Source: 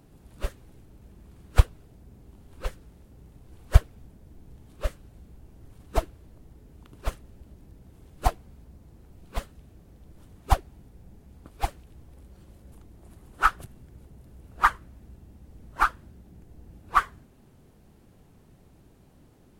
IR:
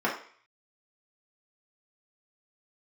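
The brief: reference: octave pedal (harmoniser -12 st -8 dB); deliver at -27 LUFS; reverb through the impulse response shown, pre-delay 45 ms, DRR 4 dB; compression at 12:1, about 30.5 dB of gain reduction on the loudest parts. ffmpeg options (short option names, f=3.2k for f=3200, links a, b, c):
-filter_complex "[0:a]acompressor=threshold=-41dB:ratio=12,asplit=2[a][b];[1:a]atrim=start_sample=2205,adelay=45[c];[b][c]afir=irnorm=-1:irlink=0,volume=-16.5dB[d];[a][d]amix=inputs=2:normalize=0,asplit=2[e][f];[f]asetrate=22050,aresample=44100,atempo=2,volume=-8dB[g];[e][g]amix=inputs=2:normalize=0,volume=22.5dB"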